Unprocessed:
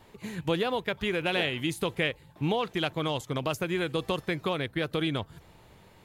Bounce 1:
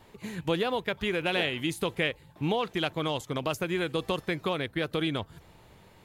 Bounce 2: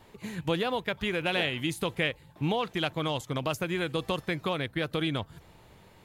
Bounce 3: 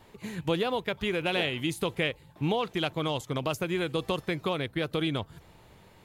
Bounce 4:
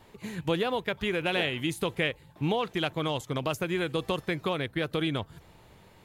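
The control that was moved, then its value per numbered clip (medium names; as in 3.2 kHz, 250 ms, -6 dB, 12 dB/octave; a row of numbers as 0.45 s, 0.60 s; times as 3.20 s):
dynamic bell, frequency: 130 Hz, 400 Hz, 1.7 kHz, 4.7 kHz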